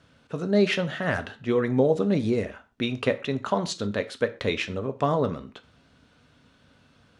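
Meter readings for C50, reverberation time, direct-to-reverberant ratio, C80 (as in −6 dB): 16.5 dB, non-exponential decay, 9.0 dB, 21.5 dB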